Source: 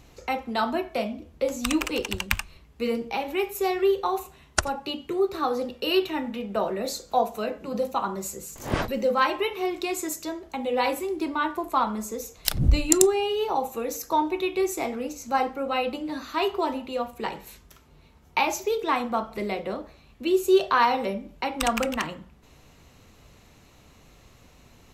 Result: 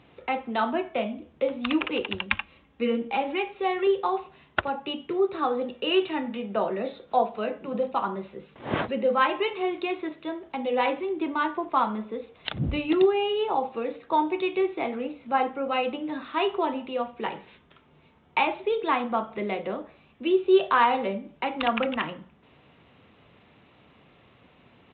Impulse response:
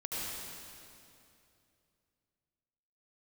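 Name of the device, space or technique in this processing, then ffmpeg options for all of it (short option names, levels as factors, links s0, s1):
Bluetooth headset: -filter_complex "[0:a]asettb=1/sr,asplit=3[s0][s1][s2];[s0]atrim=end=2.304[s3];[s1]atrim=start=2.3:end=3.87,asetpts=PTS-STARTPTS,afade=t=in:d=0.004:c=qsin,afade=t=out:st=1.566:d=0.004:c=qsin,aecho=1:1:3.7:0.45,atrim=end_sample=69237[s4];[s2]atrim=start=3.866[s5];[s3][s4]acrossfade=d=0.004:c1=hsin:c2=qsin[s6];[s6][s5]acrossfade=d=0.004:c1=qsin:c2=hsin,highpass=130,aresample=8000,aresample=44100" -ar 16000 -c:a sbc -b:a 64k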